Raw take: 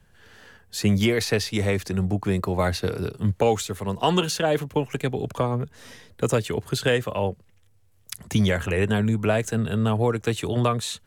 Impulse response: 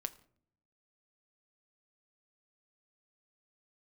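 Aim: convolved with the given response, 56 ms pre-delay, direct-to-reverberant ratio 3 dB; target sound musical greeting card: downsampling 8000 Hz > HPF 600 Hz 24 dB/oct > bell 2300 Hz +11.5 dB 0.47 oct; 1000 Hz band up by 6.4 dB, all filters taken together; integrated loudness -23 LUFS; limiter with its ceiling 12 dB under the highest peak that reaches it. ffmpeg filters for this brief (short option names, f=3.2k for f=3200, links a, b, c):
-filter_complex "[0:a]equalizer=f=1k:t=o:g=8,alimiter=limit=-15.5dB:level=0:latency=1,asplit=2[a][b];[1:a]atrim=start_sample=2205,adelay=56[c];[b][c]afir=irnorm=-1:irlink=0,volume=-1.5dB[d];[a][d]amix=inputs=2:normalize=0,aresample=8000,aresample=44100,highpass=f=600:w=0.5412,highpass=f=600:w=1.3066,equalizer=f=2.3k:t=o:w=0.47:g=11.5,volume=4dB"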